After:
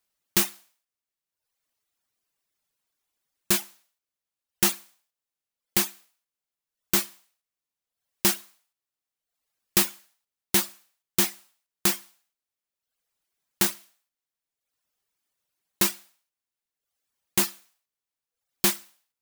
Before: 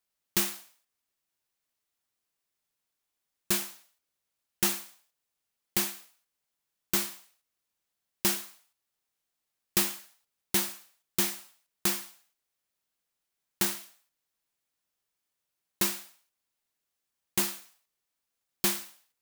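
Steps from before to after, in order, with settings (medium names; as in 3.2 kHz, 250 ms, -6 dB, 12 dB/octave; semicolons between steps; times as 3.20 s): reverb removal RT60 1 s; trim +5 dB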